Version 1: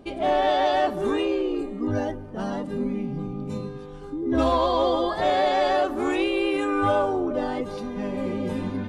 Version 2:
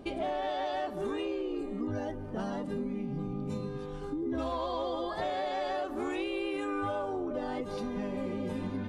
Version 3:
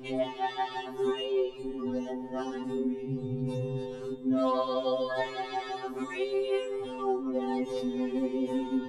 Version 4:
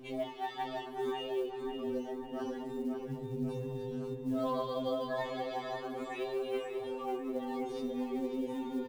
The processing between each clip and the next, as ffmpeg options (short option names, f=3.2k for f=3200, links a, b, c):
-af "acompressor=threshold=-32dB:ratio=5"
-af "afftfilt=real='re*2.45*eq(mod(b,6),0)':imag='im*2.45*eq(mod(b,6),0)':win_size=2048:overlap=0.75,volume=4.5dB"
-filter_complex "[0:a]acrusher=bits=8:mode=log:mix=0:aa=0.000001,asplit=2[a][b];[b]adelay=544,lowpass=f=2.9k:p=1,volume=-5.5dB,asplit=2[c][d];[d]adelay=544,lowpass=f=2.9k:p=1,volume=0.5,asplit=2[e][f];[f]adelay=544,lowpass=f=2.9k:p=1,volume=0.5,asplit=2[g][h];[h]adelay=544,lowpass=f=2.9k:p=1,volume=0.5,asplit=2[i][j];[j]adelay=544,lowpass=f=2.9k:p=1,volume=0.5,asplit=2[k][l];[l]adelay=544,lowpass=f=2.9k:p=1,volume=0.5[m];[a][c][e][g][i][k][m]amix=inputs=7:normalize=0,volume=-6.5dB"